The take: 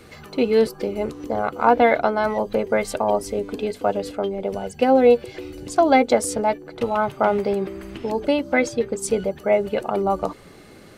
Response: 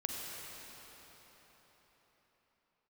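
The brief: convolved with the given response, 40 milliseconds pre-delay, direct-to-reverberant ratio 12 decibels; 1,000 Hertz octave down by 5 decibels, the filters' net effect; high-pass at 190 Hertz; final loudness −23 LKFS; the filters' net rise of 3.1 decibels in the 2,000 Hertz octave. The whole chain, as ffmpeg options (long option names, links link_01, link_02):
-filter_complex "[0:a]highpass=190,equalizer=frequency=1000:width_type=o:gain=-8.5,equalizer=frequency=2000:width_type=o:gain=6,asplit=2[link_01][link_02];[1:a]atrim=start_sample=2205,adelay=40[link_03];[link_02][link_03]afir=irnorm=-1:irlink=0,volume=-14.5dB[link_04];[link_01][link_04]amix=inputs=2:normalize=0"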